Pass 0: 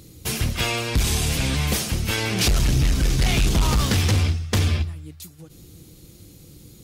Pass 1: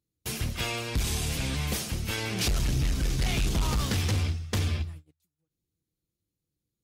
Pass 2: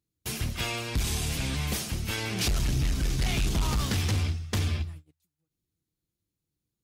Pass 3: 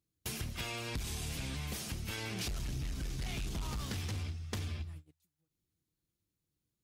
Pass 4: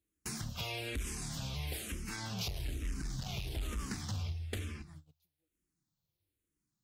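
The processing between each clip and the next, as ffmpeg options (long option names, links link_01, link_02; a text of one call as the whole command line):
ffmpeg -i in.wav -af "agate=range=-32dB:threshold=-33dB:ratio=16:detection=peak,volume=-7.5dB" out.wav
ffmpeg -i in.wav -af "equalizer=frequency=500:width_type=o:width=0.28:gain=-3.5" out.wav
ffmpeg -i in.wav -af "acompressor=threshold=-35dB:ratio=6,volume=-1.5dB" out.wav
ffmpeg -i in.wav -filter_complex "[0:a]asplit=2[link_01][link_02];[link_02]afreqshift=-1.1[link_03];[link_01][link_03]amix=inputs=2:normalize=1,volume=2.5dB" out.wav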